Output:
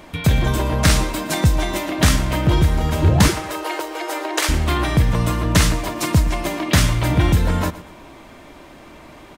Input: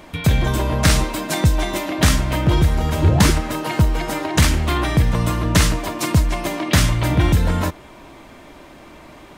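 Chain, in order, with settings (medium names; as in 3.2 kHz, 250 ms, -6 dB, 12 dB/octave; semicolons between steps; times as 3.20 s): 3.28–4.49 s: elliptic high-pass 330 Hz, stop band 40 dB; on a send: feedback delay 118 ms, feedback 33%, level -17 dB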